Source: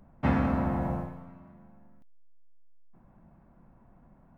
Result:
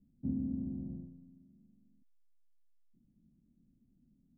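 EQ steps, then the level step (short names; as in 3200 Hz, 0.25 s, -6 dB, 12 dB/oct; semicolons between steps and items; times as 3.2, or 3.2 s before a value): ladder low-pass 300 Hz, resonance 55%; -5.0 dB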